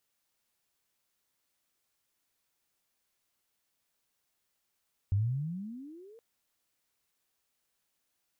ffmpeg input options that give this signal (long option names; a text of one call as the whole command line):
ffmpeg -f lavfi -i "aevalsrc='pow(10,(-23.5-28*t/1.07)/20)*sin(2*PI*94*1.07/(28*log(2)/12)*(exp(28*log(2)/12*t/1.07)-1))':duration=1.07:sample_rate=44100" out.wav